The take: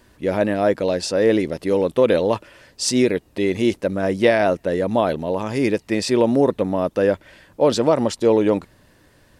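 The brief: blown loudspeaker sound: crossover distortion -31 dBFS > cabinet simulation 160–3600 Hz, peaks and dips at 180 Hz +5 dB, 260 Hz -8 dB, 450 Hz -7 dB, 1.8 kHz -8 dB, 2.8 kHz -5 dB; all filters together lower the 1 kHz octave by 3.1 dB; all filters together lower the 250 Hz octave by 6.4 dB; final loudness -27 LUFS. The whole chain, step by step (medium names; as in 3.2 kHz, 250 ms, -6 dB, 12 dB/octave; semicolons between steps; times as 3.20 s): peaking EQ 250 Hz -4 dB; peaking EQ 1 kHz -3 dB; crossover distortion -31 dBFS; cabinet simulation 160–3600 Hz, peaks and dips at 180 Hz +5 dB, 260 Hz -8 dB, 450 Hz -7 dB, 1.8 kHz -8 dB, 2.8 kHz -5 dB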